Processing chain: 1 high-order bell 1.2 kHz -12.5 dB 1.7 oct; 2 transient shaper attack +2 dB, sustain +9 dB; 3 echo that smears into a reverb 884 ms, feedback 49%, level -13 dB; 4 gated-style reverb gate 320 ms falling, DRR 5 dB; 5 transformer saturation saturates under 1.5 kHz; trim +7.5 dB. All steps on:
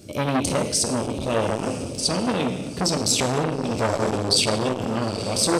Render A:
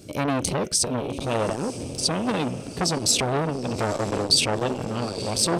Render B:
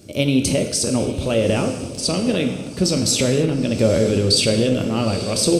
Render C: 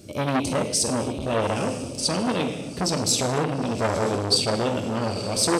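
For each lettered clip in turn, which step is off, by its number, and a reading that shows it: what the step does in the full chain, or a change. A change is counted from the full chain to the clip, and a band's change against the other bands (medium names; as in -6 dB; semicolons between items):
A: 4, momentary loudness spread change +3 LU; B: 5, crest factor change -2.5 dB; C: 2, loudness change -1.0 LU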